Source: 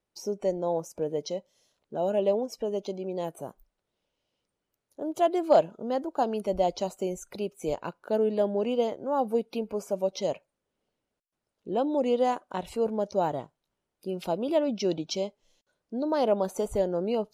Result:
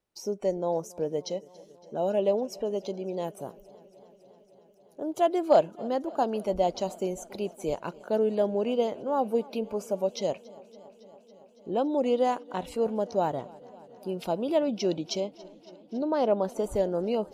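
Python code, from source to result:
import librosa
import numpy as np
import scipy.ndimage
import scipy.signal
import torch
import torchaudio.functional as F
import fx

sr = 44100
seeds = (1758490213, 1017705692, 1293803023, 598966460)

y = fx.high_shelf(x, sr, hz=3900.0, db=-8.5, at=(15.2, 16.64))
y = fx.echo_warbled(y, sr, ms=279, feedback_pct=79, rate_hz=2.8, cents=56, wet_db=-23.0)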